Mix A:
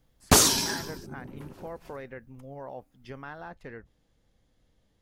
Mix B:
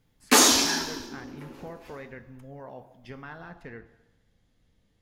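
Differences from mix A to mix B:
background: add steep high-pass 240 Hz 48 dB/octave; reverb: on, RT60 1.1 s

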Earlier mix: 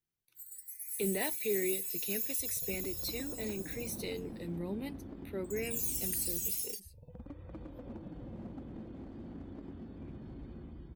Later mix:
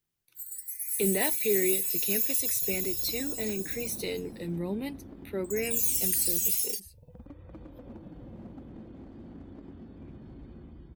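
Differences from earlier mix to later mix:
speech +6.0 dB; first sound +8.5 dB

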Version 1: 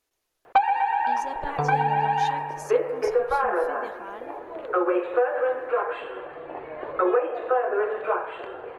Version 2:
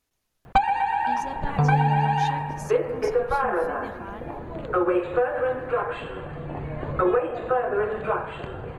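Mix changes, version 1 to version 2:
first sound: add tone controls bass +15 dB, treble +10 dB; master: add resonant low shelf 270 Hz +8.5 dB, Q 1.5

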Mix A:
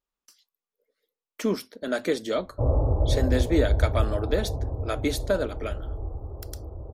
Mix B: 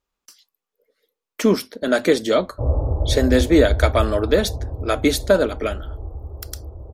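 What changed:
speech +9.0 dB; master: add peaking EQ 70 Hz +7.5 dB 0.23 oct

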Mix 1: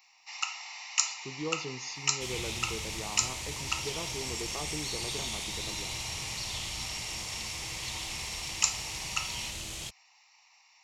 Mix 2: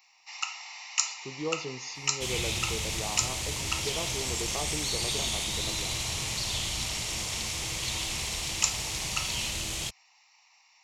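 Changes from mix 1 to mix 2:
speech: add peaking EQ 640 Hz +6.5 dB 0.96 oct; second sound +6.0 dB

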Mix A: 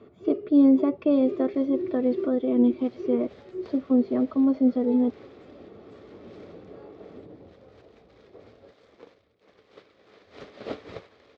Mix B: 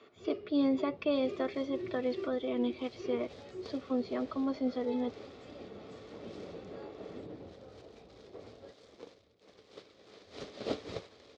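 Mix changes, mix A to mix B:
speech: add high-pass 1.1 kHz 6 dB/octave; second sound: add peaking EQ 1.9 kHz -8 dB 2 oct; master: add treble shelf 2.2 kHz +10 dB

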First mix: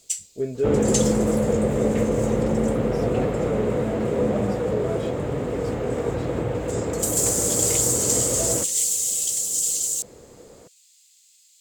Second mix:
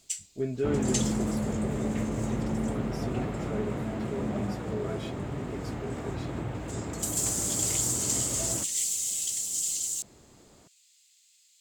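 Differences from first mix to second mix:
first sound: add treble shelf 4.5 kHz -9 dB; second sound -6.0 dB; master: add peaking EQ 490 Hz -14 dB 0.42 oct

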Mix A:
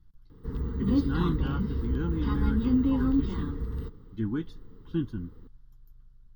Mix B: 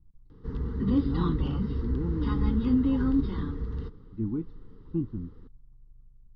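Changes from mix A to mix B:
speech: add boxcar filter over 27 samples; master: add steep low-pass 6.6 kHz

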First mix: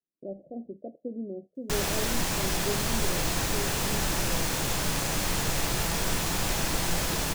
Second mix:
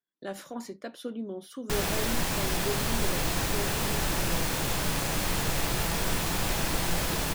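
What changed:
speech: remove steep low-pass 700 Hz 96 dB/octave; master: add peaking EQ 6.5 kHz -3.5 dB 0.91 oct

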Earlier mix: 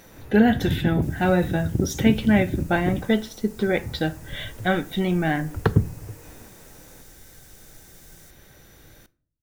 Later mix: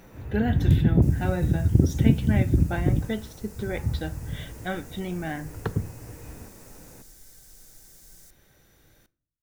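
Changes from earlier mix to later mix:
speech -9.0 dB; first sound: add bass shelf 160 Hz +10.5 dB

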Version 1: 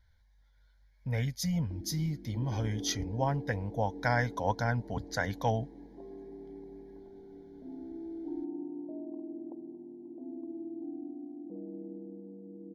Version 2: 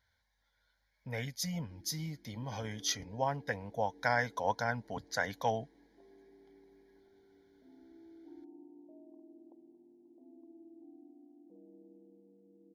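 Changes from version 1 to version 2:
background -11.0 dB; master: add high-pass 370 Hz 6 dB/octave

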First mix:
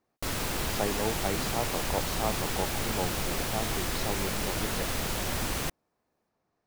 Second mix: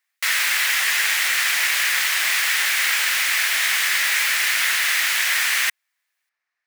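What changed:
background +11.5 dB; master: add resonant high-pass 1.9 kHz, resonance Q 3.2

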